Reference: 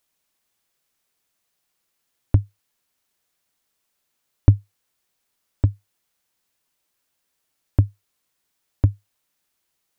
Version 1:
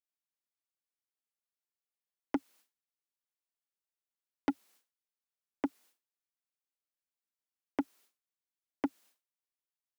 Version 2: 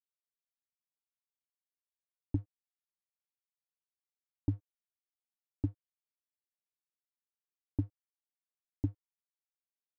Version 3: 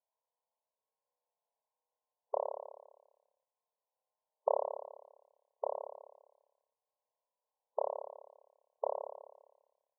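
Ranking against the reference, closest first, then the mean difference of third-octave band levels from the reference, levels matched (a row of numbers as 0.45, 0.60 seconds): 2, 1, 3; 2.5, 9.0, 12.5 decibels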